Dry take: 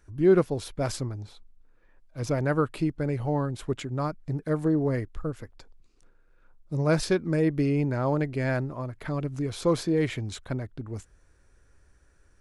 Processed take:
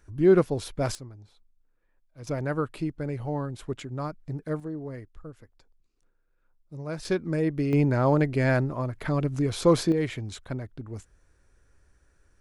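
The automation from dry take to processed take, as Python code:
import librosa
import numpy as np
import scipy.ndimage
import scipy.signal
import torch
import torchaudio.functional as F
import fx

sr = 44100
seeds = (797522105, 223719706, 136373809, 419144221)

y = fx.gain(x, sr, db=fx.steps((0.0, 1.0), (0.95, -11.0), (2.27, -3.5), (4.6, -11.0), (7.05, -2.0), (7.73, 4.0), (9.92, -2.0)))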